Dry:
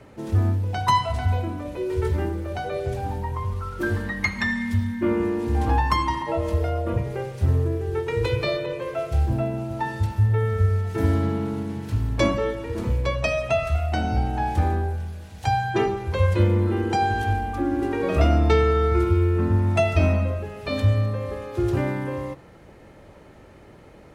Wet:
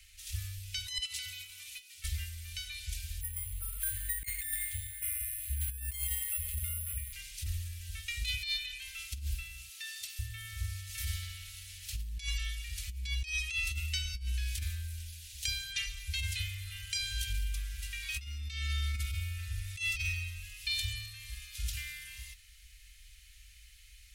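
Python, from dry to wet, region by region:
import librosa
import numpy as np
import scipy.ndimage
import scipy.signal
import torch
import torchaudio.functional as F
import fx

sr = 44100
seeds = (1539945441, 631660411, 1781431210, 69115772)

y = fx.chain(x, sr, fx.highpass(hz=150.0, slope=24),
    fx.notch(hz=1700.0, q=7.6),
    fx.over_compress(threshold_db=-32.0, ratio=-1.0), at=(0.98, 2.04))
y = fx.chain(y, sr, fx.highpass(hz=54.0, slope=12),
    fx.air_absorb(metres=270.0),
    fx.resample_bad(factor=4, down='filtered', up='hold'), at=(3.21, 7.13))
y = fx.chain(y, sr, fx.highpass(hz=380.0, slope=12),
    fx.low_shelf(hz=490.0, db=-7.5), at=(9.68, 10.19))
y = scipy.signal.sosfilt(scipy.signal.cheby2(4, 60, [160.0, 880.0], 'bandstop', fs=sr, output='sos'), y)
y = fx.high_shelf(y, sr, hz=5100.0, db=9.5)
y = fx.over_compress(y, sr, threshold_db=-33.0, ratio=-0.5)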